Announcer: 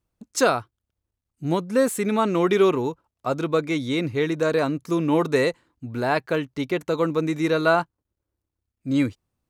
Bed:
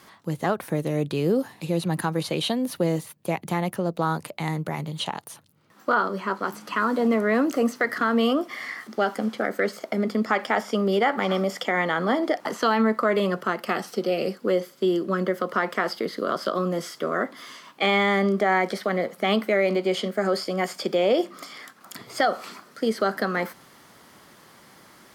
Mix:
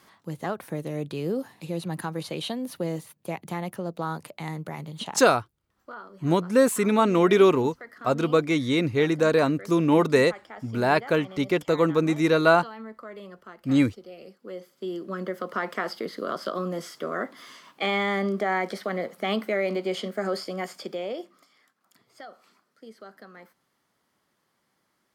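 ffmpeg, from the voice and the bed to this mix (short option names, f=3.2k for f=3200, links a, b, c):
-filter_complex "[0:a]adelay=4800,volume=1dB[a];[1:a]volume=9dB,afade=t=out:st=5.11:d=0.4:silence=0.211349,afade=t=in:st=14.37:d=1.28:silence=0.177828,afade=t=out:st=20.37:d=1.09:silence=0.133352[b];[a][b]amix=inputs=2:normalize=0"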